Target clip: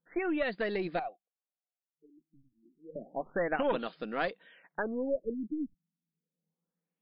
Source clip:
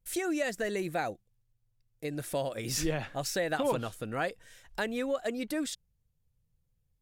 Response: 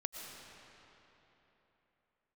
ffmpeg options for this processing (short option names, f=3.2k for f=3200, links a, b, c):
-filter_complex "[0:a]asettb=1/sr,asplit=3[a][b][c];[a]atrim=end=0.994[d];[b]atrim=start=0.99:end=2.96,asetpts=PTS-STARTPTS,afade=t=in:d=0.004:c=qsin,afade=t=out:st=1.966:d=0.004:c=qsin,asplit=3[e][f][g];[e]bandpass=f=730:t=q:w=8,volume=0dB[h];[f]bandpass=f=1.09k:t=q:w=8,volume=-6dB[i];[g]bandpass=f=2.44k:t=q:w=8,volume=-9dB[j];[h][i][j]amix=inputs=3:normalize=0[k];[c]atrim=start=2.956[l];[d][k]acrossfade=d=0.004:c1=hsin:c2=qsin[m];[m][l]acrossfade=d=0.004:c1=qsin:c2=hsin,afftfilt=real='re*between(b*sr/4096,160,9600)':imag='im*between(b*sr/4096,160,9600)':win_size=4096:overlap=0.75,aeval=exprs='0.133*(cos(1*acos(clip(val(0)/0.133,-1,1)))-cos(1*PI/2))+0.0335*(cos(2*acos(clip(val(0)/0.133,-1,1)))-cos(2*PI/2))':c=same,afftfilt=real='re*lt(b*sr/1024,310*pow(5400/310,0.5+0.5*sin(2*PI*0.3*pts/sr)))':imag='im*lt(b*sr/1024,310*pow(5400/310,0.5+0.5*sin(2*PI*0.3*pts/sr)))':win_size=1024:overlap=0.75"